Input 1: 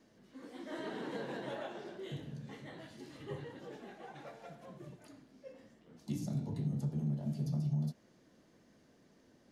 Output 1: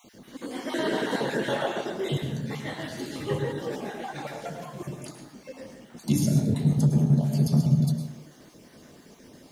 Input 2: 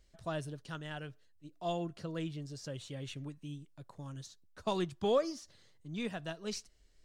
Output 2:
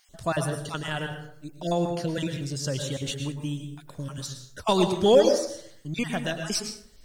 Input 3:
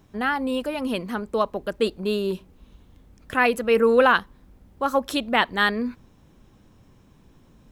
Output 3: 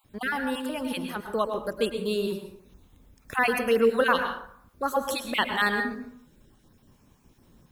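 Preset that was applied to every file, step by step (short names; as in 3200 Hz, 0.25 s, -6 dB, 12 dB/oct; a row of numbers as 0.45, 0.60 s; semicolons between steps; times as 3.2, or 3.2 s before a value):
random spectral dropouts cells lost 25%; high shelf 6400 Hz +10.5 dB; plate-style reverb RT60 0.64 s, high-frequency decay 0.55×, pre-delay 95 ms, DRR 5.5 dB; match loudness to -27 LUFS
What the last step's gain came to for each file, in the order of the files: +14.5, +11.5, -4.0 dB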